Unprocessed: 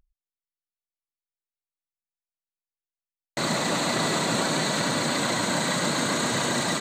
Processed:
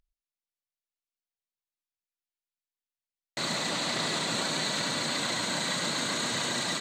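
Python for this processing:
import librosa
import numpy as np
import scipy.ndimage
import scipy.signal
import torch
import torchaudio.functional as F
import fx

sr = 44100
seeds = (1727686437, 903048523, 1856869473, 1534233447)

y = fx.peak_eq(x, sr, hz=3800.0, db=7.5, octaves=2.2)
y = y + 10.0 ** (-20.5 / 20.0) * np.pad(y, (int(87 * sr / 1000.0), 0))[:len(y)]
y = fx.doppler_dist(y, sr, depth_ms=0.1, at=(3.7, 4.26))
y = y * librosa.db_to_amplitude(-8.5)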